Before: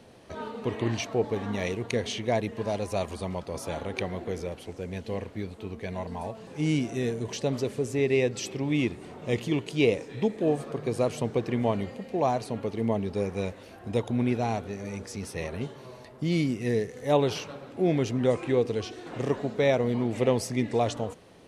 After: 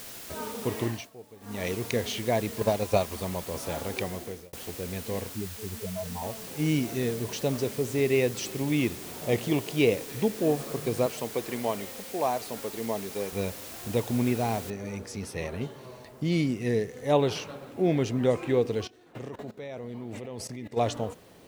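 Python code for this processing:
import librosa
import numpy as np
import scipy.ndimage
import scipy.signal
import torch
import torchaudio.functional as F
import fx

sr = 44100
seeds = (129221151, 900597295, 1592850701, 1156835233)

y = fx.transient(x, sr, attack_db=11, sustain_db=-3, at=(2.61, 3.12))
y = fx.spec_expand(y, sr, power=3.1, at=(5.33, 6.22))
y = fx.peak_eq(y, sr, hz=690.0, db=7.0, octaves=0.77, at=(9.21, 9.79))
y = fx.highpass(y, sr, hz=470.0, slope=6, at=(11.06, 13.33))
y = fx.noise_floor_step(y, sr, seeds[0], at_s=14.7, before_db=-43, after_db=-64, tilt_db=0.0)
y = fx.level_steps(y, sr, step_db=19, at=(18.86, 20.76), fade=0.02)
y = fx.edit(y, sr, fx.fade_down_up(start_s=0.8, length_s=0.9, db=-20.5, fade_s=0.3),
    fx.fade_out_span(start_s=3.87, length_s=0.66, curve='qsin'), tone=tone)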